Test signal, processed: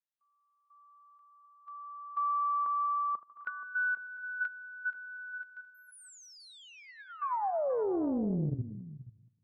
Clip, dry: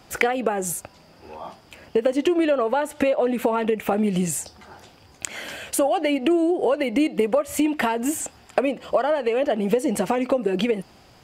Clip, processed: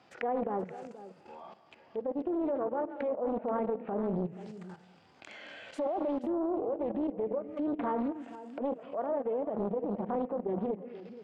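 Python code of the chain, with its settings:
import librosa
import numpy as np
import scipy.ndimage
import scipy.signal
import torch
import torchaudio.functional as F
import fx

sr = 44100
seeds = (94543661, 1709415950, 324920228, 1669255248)

y = fx.reverse_delay_fb(x, sr, ms=110, feedback_pct=51, wet_db=-12.5)
y = scipy.signal.sosfilt(scipy.signal.butter(2, 3800.0, 'lowpass', fs=sr, output='sos'), y)
y = fx.env_lowpass_down(y, sr, base_hz=730.0, full_db=-20.0)
y = scipy.signal.sosfilt(scipy.signal.butter(2, 110.0, 'highpass', fs=sr, output='sos'), y)
y = fx.low_shelf(y, sr, hz=160.0, db=-8.5)
y = fx.level_steps(y, sr, step_db=15)
y = fx.hpss(y, sr, part='percussive', gain_db=-9)
y = y + 10.0 ** (-15.0 / 20.0) * np.pad(y, (int(479 * sr / 1000.0), 0))[:len(y)]
y = fx.doppler_dist(y, sr, depth_ms=0.63)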